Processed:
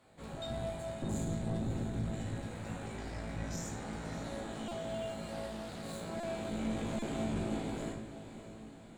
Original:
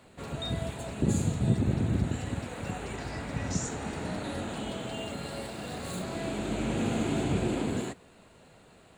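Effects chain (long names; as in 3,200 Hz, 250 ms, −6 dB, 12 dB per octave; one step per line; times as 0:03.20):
notch filter 2,700 Hz, Q 13
tuned comb filter 55 Hz, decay 0.26 s, harmonics all, mix 90%
tube saturation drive 33 dB, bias 0.6
feedback delay with all-pass diffusion 603 ms, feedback 56%, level −12 dB
on a send at −3.5 dB: convolution reverb RT60 0.80 s, pre-delay 4 ms
on the sum: buffer that repeats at 0:04.68/0:06.20/0:06.99, samples 128, times 10
0:05.32–0:05.83: highs frequency-modulated by the lows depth 0.23 ms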